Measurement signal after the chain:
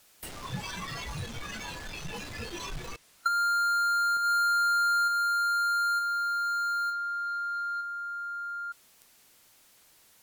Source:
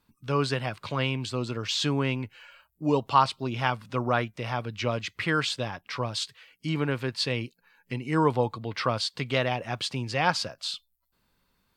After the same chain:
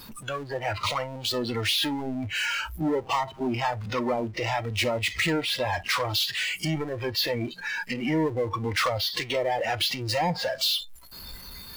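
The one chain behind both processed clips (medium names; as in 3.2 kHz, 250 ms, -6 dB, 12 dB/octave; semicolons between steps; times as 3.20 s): low-pass that closes with the level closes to 560 Hz, closed at -20 dBFS; power-law waveshaper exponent 0.35; compression 2:1, threshold -27 dBFS; spectral noise reduction 16 dB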